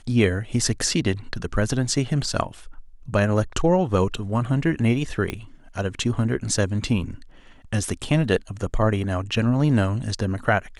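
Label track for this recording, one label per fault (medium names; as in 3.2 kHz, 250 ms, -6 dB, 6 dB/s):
5.300000	5.300000	pop -13 dBFS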